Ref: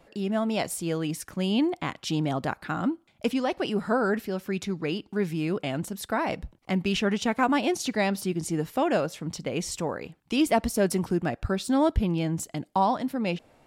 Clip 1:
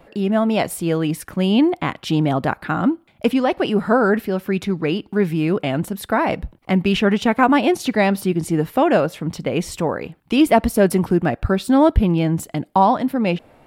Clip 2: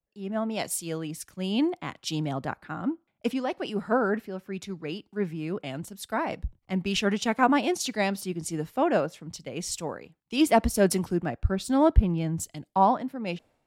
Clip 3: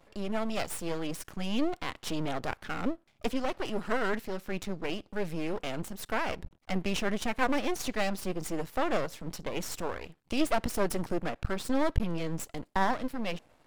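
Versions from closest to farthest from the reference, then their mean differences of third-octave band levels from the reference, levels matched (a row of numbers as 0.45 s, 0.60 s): 1, 2, 3; 1.5 dB, 4.0 dB, 5.5 dB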